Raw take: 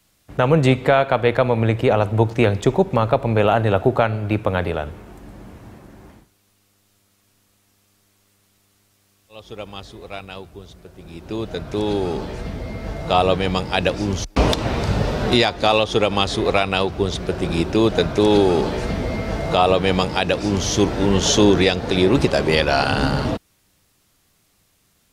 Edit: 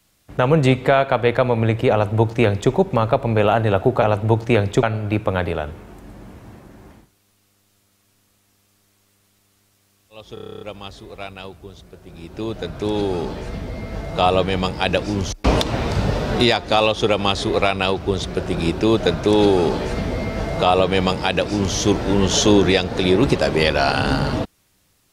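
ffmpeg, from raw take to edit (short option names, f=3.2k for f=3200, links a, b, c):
-filter_complex "[0:a]asplit=12[a][b][c][d][e][f][g][h][i][j][k][l];[a]atrim=end=4.022[m];[b]atrim=start=1.908:end=2.722[n];[c]atrim=start=4.018:end=9.562[o];[d]atrim=start=9.528:end=9.562[p];[e]atrim=start=9.528:end=9.562[q];[f]atrim=start=9.528:end=9.562[r];[g]atrim=start=9.528:end=9.562[s];[h]atrim=start=9.528:end=9.562[t];[i]atrim=start=9.528:end=9.562[u];[j]atrim=start=9.528:end=9.562[v];[k]atrim=start=9.528:end=9.562[w];[l]atrim=start=9.528[x];[m][n]acrossfade=d=0.004:c1=hsin:c2=hsin[y];[y][o]acrossfade=d=0.004:c1=hsin:c2=hsin[z];[z][p]acrossfade=d=0.004:c1=hsin:c2=hsin[aa];[aa][q]acrossfade=d=0.004:c1=hsin:c2=hsin[ab];[ab][r]acrossfade=d=0.004:c1=hsin:c2=hsin[ac];[ac][s]acrossfade=d=0.004:c1=hsin:c2=hsin[ad];[ad][t]acrossfade=d=0.004:c1=hsin:c2=hsin[ae];[ae][u]acrossfade=d=0.004:c1=hsin:c2=hsin[af];[af][v]acrossfade=d=0.004:c1=hsin:c2=hsin[ag];[ag][w]acrossfade=d=0.004:c1=hsin:c2=hsin[ah];[ah][x]acrossfade=d=0.004:c1=hsin:c2=hsin"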